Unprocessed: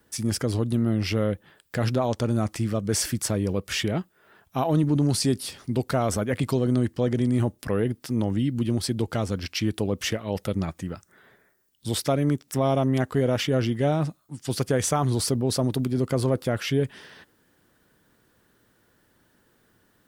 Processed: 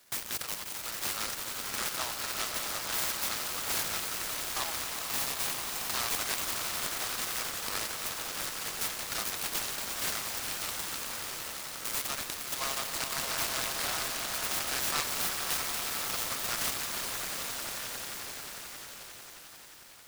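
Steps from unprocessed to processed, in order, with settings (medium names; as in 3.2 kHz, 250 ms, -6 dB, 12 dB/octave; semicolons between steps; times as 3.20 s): high-pass 1.3 kHz 24 dB/octave; peaking EQ 8 kHz +14 dB 0.34 oct; peak limiter -27.5 dBFS, peak gain reduction 21.5 dB; echo with a slow build-up 89 ms, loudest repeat 8, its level -10 dB; delay time shaken by noise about 3 kHz, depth 0.15 ms; trim +5 dB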